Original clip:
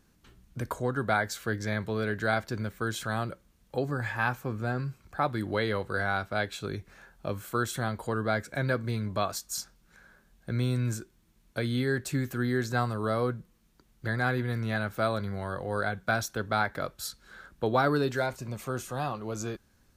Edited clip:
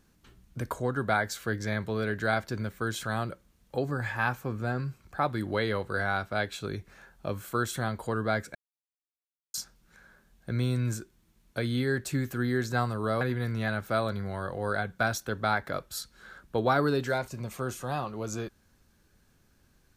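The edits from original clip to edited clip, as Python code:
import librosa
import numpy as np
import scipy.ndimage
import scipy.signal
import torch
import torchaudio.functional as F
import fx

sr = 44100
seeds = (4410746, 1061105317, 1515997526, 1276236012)

y = fx.edit(x, sr, fx.silence(start_s=8.55, length_s=0.99),
    fx.cut(start_s=13.21, length_s=1.08), tone=tone)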